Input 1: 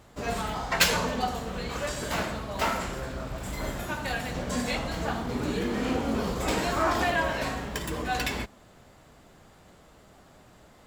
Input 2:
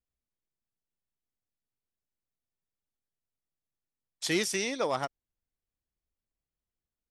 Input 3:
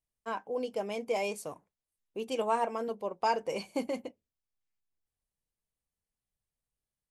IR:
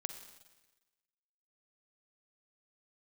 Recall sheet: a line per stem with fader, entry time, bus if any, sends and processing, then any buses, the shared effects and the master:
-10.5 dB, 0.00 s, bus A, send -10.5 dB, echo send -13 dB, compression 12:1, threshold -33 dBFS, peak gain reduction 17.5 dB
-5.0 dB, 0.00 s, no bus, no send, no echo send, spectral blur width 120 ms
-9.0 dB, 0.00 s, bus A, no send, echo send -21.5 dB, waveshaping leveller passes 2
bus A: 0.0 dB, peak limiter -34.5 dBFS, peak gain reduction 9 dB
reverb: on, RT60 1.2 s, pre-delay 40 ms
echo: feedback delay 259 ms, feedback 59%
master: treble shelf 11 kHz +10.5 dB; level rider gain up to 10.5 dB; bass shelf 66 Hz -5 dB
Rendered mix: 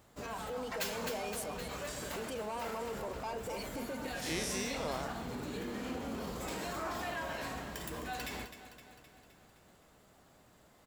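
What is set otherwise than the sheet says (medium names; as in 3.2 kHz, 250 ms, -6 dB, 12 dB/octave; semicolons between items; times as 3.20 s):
stem 1: missing compression 12:1, threshold -33 dBFS, peak gain reduction 17.5 dB; stem 3 -9.0 dB -> -1.0 dB; master: missing level rider gain up to 10.5 dB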